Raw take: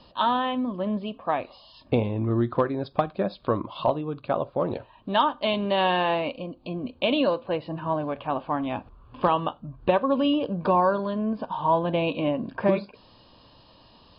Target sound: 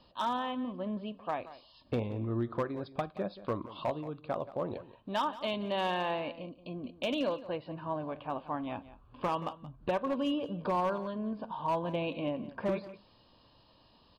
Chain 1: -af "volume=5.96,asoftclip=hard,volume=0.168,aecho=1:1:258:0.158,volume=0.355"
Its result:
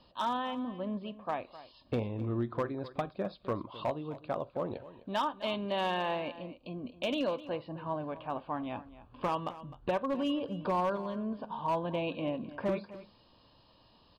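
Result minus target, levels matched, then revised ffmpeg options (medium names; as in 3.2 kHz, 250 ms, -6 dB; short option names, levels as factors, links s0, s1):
echo 81 ms late
-af "volume=5.96,asoftclip=hard,volume=0.168,aecho=1:1:177:0.158,volume=0.355"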